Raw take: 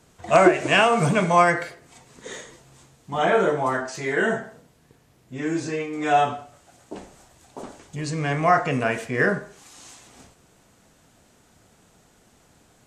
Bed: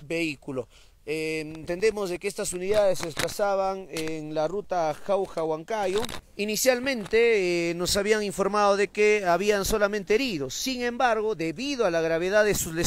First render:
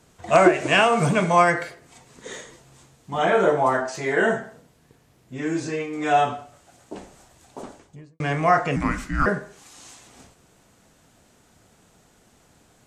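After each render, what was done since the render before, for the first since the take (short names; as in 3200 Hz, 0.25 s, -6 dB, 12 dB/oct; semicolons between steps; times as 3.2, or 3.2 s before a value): 3.43–4.32 bell 720 Hz +5.5 dB 1.2 oct; 7.6–8.2 studio fade out; 8.76–9.26 frequency shift -420 Hz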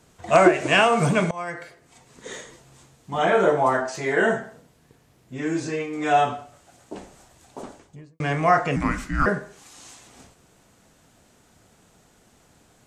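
1.31–2.29 fade in, from -23 dB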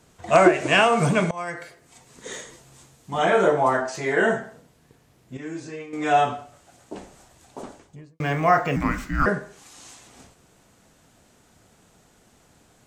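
1.37–3.48 high shelf 5600 Hz +5.5 dB; 5.37–5.93 gain -8 dB; 8.13–9.23 decimation joined by straight lines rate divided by 2×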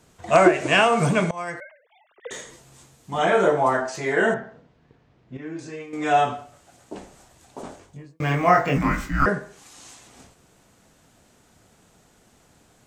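1.6–2.31 sine-wave speech; 4.34–5.59 air absorption 220 m; 7.62–9.26 doubler 22 ms -2 dB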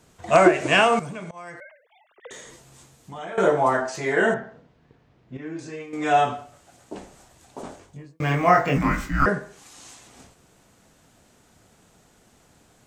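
0.99–3.38 compressor 2.5:1, threshold -39 dBFS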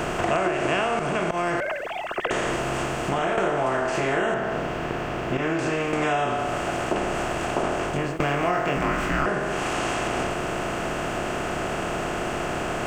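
per-bin compression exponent 0.4; compressor 6:1, threshold -21 dBFS, peak gain reduction 13.5 dB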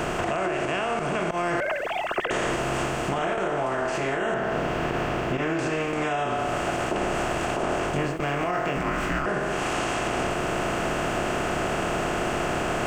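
limiter -16 dBFS, peak gain reduction 8 dB; vocal rider 0.5 s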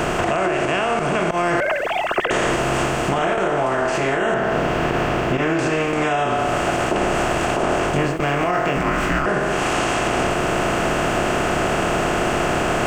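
gain +6.5 dB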